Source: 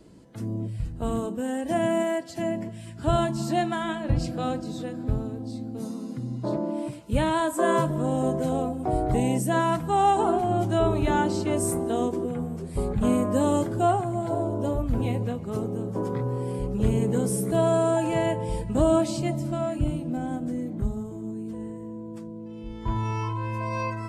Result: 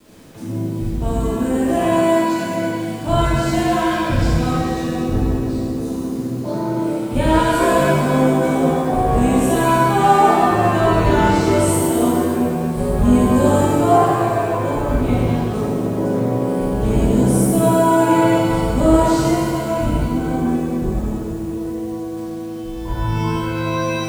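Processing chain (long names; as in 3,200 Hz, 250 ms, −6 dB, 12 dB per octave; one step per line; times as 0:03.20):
bit reduction 9 bits
reverb with rising layers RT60 1.9 s, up +7 semitones, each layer −8 dB, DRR −9.5 dB
level −2 dB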